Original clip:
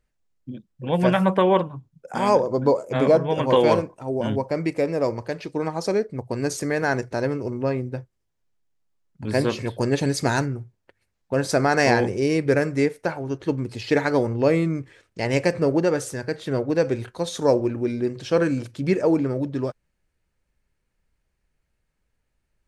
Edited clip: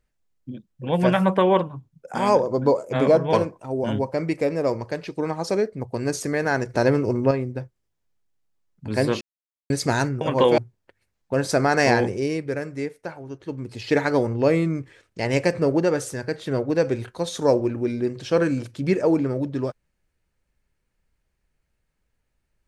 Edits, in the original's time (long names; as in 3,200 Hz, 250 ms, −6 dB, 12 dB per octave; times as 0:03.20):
0:03.33–0:03.70: move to 0:10.58
0:07.06–0:07.68: clip gain +5.5 dB
0:09.58–0:10.07: silence
0:12.04–0:13.94: duck −8 dB, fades 0.44 s